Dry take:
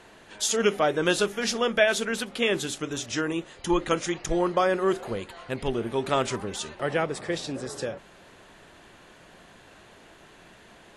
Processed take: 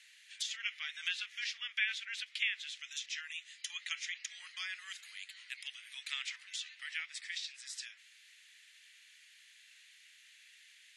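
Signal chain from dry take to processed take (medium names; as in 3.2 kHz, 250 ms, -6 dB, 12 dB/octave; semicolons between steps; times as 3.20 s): Chebyshev high-pass 2 kHz, order 4; low-pass that closes with the level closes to 2.7 kHz, closed at -30 dBFS; trim -2 dB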